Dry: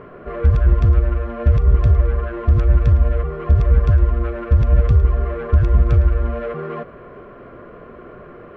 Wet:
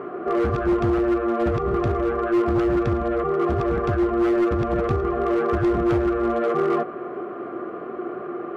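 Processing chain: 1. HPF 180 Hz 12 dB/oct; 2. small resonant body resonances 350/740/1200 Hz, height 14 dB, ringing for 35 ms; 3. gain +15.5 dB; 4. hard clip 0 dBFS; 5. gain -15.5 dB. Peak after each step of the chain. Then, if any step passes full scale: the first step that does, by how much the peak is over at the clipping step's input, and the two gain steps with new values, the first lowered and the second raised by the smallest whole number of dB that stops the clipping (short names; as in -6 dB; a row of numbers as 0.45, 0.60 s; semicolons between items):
-13.5, -7.0, +8.5, 0.0, -15.5 dBFS; step 3, 8.5 dB; step 3 +6.5 dB, step 5 -6.5 dB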